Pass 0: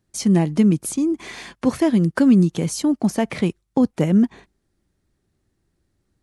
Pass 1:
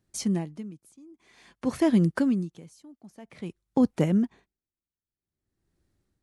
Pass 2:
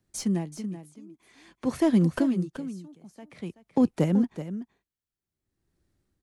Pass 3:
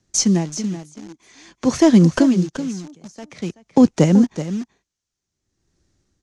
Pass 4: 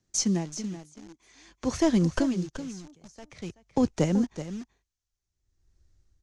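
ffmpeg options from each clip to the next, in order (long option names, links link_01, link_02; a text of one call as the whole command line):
ffmpeg -i in.wav -af "aeval=exprs='val(0)*pow(10,-27*(0.5-0.5*cos(2*PI*0.51*n/s))/20)':channel_layout=same,volume=-3.5dB" out.wav
ffmpeg -i in.wav -filter_complex "[0:a]acrossover=split=200|1100|5700[link_01][link_02][link_03][link_04];[link_03]aeval=exprs='clip(val(0),-1,0.00631)':channel_layout=same[link_05];[link_01][link_02][link_05][link_04]amix=inputs=4:normalize=0,aecho=1:1:379:0.266" out.wav
ffmpeg -i in.wav -filter_complex "[0:a]asplit=2[link_01][link_02];[link_02]acrusher=bits=6:mix=0:aa=0.000001,volume=-9dB[link_03];[link_01][link_03]amix=inputs=2:normalize=0,lowpass=frequency=6300:width_type=q:width=3.5,volume=7dB" out.wav
ffmpeg -i in.wav -af "asubboost=boost=10.5:cutoff=70,volume=-8.5dB" out.wav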